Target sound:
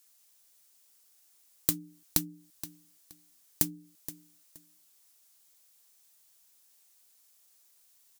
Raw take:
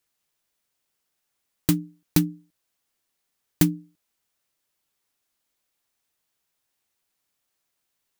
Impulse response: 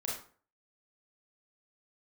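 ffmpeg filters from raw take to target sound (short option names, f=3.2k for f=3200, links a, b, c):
-filter_complex "[0:a]bass=f=250:g=-7,treble=f=4k:g=12,acompressor=threshold=-27dB:ratio=12,asplit=2[a][b];[b]aecho=0:1:473|946:0.188|0.0433[c];[a][c]amix=inputs=2:normalize=0,volume=3dB"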